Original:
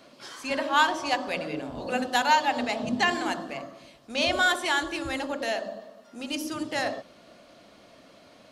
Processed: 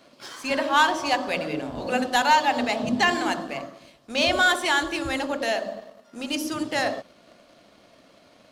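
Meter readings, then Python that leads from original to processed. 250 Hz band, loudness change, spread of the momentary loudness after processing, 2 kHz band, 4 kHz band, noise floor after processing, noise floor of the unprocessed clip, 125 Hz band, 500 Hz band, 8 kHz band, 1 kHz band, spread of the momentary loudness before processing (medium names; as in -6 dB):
+3.5 dB, +3.5 dB, 15 LU, +3.0 dB, +3.0 dB, -56 dBFS, -55 dBFS, +3.5 dB, +3.5 dB, +3.5 dB, +3.0 dB, 16 LU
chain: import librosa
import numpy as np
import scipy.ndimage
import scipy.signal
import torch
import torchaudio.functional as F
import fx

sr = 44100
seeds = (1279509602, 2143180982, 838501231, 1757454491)

y = fx.leveller(x, sr, passes=1)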